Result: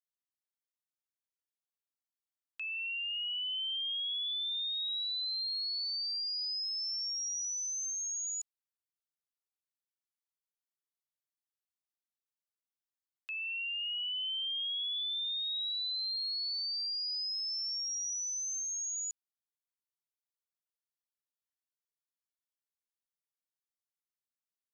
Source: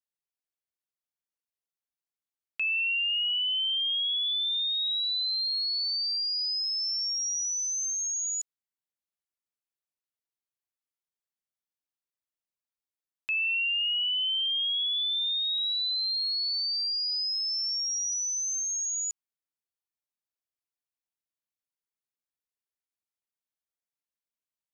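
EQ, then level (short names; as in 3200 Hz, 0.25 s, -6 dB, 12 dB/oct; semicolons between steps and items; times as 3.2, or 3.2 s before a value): HPF 1100 Hz 12 dB/oct; bell 2300 Hz -8.5 dB 0.4 oct; -6.0 dB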